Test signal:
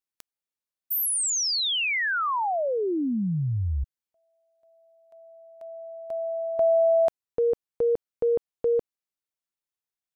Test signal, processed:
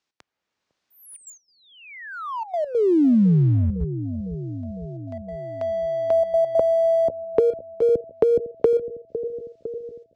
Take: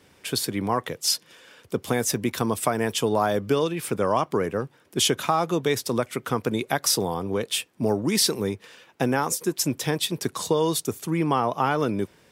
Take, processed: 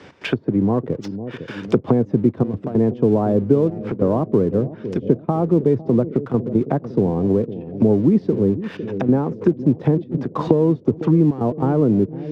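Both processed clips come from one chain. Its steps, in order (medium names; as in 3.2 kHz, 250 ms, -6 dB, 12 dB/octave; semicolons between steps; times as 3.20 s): low-pass 6.2 kHz 24 dB/octave; low-pass that closes with the level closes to 340 Hz, closed at -24 dBFS; high-pass 89 Hz 6 dB/octave; level rider gain up to 5.5 dB; trance gate "x.xxxxxxxxx." 142 bpm -12 dB; in parallel at -4 dB: crossover distortion -44.5 dBFS; on the sum: bucket-brigade echo 504 ms, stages 2048, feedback 55%, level -15 dB; three bands compressed up and down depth 40%; trim +3 dB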